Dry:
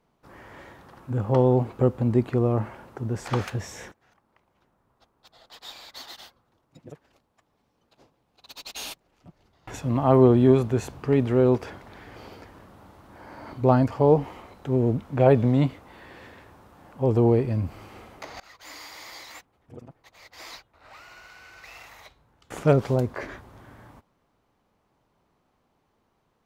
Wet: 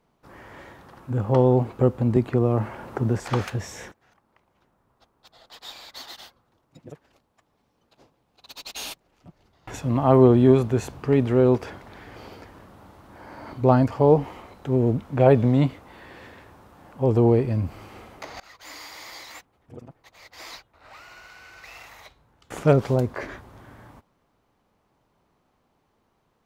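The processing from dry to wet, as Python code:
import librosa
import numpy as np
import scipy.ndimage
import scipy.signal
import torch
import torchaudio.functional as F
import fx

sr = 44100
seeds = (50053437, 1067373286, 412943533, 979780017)

y = fx.band_squash(x, sr, depth_pct=70, at=(2.16, 3.2))
y = y * 10.0 ** (1.5 / 20.0)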